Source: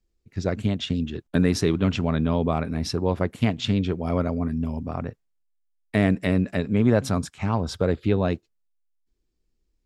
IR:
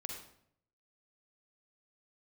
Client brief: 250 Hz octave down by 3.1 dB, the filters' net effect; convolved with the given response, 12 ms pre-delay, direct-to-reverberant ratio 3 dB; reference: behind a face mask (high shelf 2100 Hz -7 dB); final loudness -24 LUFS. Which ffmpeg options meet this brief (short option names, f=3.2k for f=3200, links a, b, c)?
-filter_complex "[0:a]equalizer=f=250:t=o:g=-4,asplit=2[a][b];[1:a]atrim=start_sample=2205,adelay=12[c];[b][c]afir=irnorm=-1:irlink=0,volume=-1.5dB[d];[a][d]amix=inputs=2:normalize=0,highshelf=f=2.1k:g=-7,volume=0.5dB"